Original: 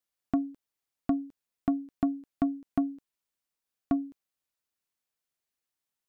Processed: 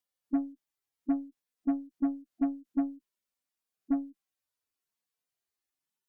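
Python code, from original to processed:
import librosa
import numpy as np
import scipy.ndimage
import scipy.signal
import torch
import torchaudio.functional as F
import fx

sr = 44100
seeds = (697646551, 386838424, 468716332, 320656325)

y = fx.hpss_only(x, sr, part='harmonic')
y = fx.cheby_harmonics(y, sr, harmonics=(3, 6, 7), levels_db=(-29, -34, -35), full_scale_db=-18.0)
y = fx.dynamic_eq(y, sr, hz=360.0, q=0.93, threshold_db=-41.0, ratio=4.0, max_db=-6)
y = F.gain(torch.from_numpy(y), 4.5).numpy()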